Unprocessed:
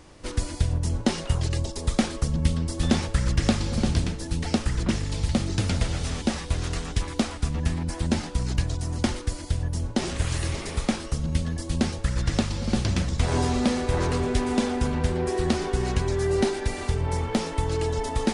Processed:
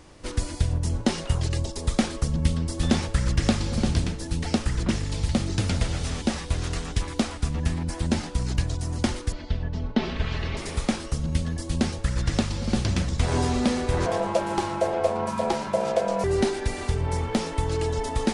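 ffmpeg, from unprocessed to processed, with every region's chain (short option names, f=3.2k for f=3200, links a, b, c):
-filter_complex "[0:a]asettb=1/sr,asplit=3[a][b][c];[a]atrim=end=9.324[d];[b]atrim=start=9.32:end=10.57,asetpts=PTS-STARTPTS,afade=t=in:d=0.004:c=qsin,afade=t=out:st=1.246:d=0.004:c=qsin,lowpass=f=4.1k:w=0.5412,lowpass=f=4.1k:w=1.3066,aecho=1:1:4.6:0.5,atrim=end_sample=55125[e];[c]atrim=start=10.566[f];[d][e]acrossfade=d=0.004:c1=hsin:c2=qsin[g];[g][f]acrossfade=d=0.004:c1=qsin:c2=hsin,asettb=1/sr,asplit=3[h][i][j];[h]atrim=end=14.064[k];[i]atrim=start=14.06:end=16.24,asetpts=PTS-STARTPTS,afade=t=in:d=0.004:c=qsin,afade=t=out:st=2.176:d=0.004:c=qsin,equalizer=f=68:w=1.3:g=5.5,aeval=exprs='val(0)*sin(2*PI*590*n/s)':c=same[l];[j]atrim=start=16.236[m];[k][l]acrossfade=d=0.004:c1=hsin:c2=qsin[n];[n][m]acrossfade=d=0.004:c1=qsin:c2=hsin"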